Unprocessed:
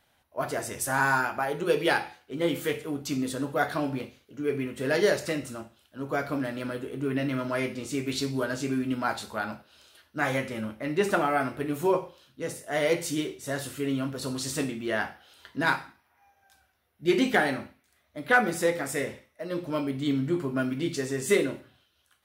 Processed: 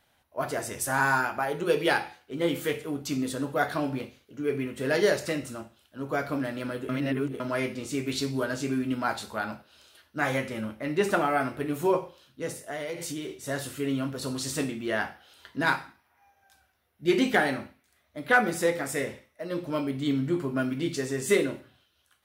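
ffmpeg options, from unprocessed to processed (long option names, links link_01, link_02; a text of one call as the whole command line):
ffmpeg -i in.wav -filter_complex "[0:a]asettb=1/sr,asplit=3[link_01][link_02][link_03];[link_01]atrim=end=12.624[link_04];[link_02]atrim=start=12.62:end=13.34,asetpts=PTS-STARTPTS,afade=type=in:duration=0.004:curve=qsin,afade=type=out:start_time=0.716:duration=0.004:curve=qsin,acompressor=threshold=-31dB:ratio=6:attack=3.2:release=140:knee=1:detection=peak[link_05];[link_03]atrim=start=13.336[link_06];[link_04][link_05]acrossfade=duration=0.004:curve1=hsin:curve2=qsin[link_07];[link_07][link_06]acrossfade=duration=0.004:curve1=qsin:curve2=hsin,asplit=3[link_08][link_09][link_10];[link_08]atrim=end=6.892[link_11];[link_09]atrim=start=6.888:end=7.402,asetpts=PTS-STARTPTS,areverse[link_12];[link_10]atrim=start=7.398[link_13];[link_11][link_12]acrossfade=duration=0.004:curve1=hsin:curve2=hsin[link_14];[link_14][link_13]acrossfade=duration=0.004:curve1=hsin:curve2=hsin" out.wav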